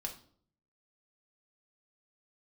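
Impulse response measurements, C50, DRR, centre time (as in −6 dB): 10.5 dB, 1.5 dB, 14 ms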